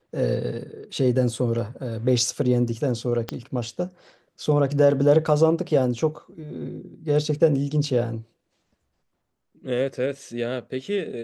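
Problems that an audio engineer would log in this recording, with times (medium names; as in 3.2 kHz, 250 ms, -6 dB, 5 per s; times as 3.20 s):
3.29 s: pop -13 dBFS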